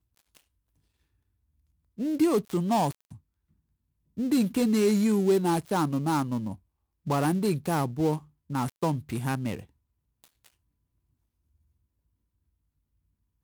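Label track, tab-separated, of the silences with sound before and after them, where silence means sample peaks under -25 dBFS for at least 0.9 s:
2.910000	4.190000	silence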